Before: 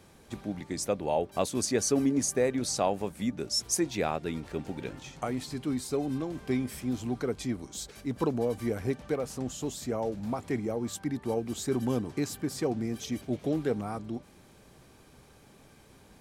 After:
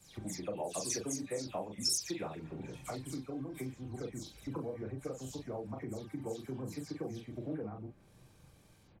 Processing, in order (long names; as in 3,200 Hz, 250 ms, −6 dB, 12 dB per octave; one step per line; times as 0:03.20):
every frequency bin delayed by itself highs early, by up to 299 ms
tempo change 1.8×
low-shelf EQ 140 Hz +7.5 dB
double-tracking delay 38 ms −4 dB
downward compressor 4 to 1, threshold −44 dBFS, peak gain reduction 19 dB
low-shelf EQ 61 Hz −8 dB
multiband upward and downward expander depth 100%
level +4 dB